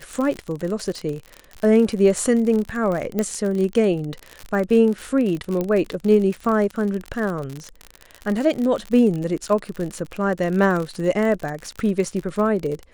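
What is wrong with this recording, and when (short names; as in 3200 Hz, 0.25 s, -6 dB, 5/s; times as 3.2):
crackle 54/s -25 dBFS
3.19 pop -10 dBFS
5.61 pop -12 dBFS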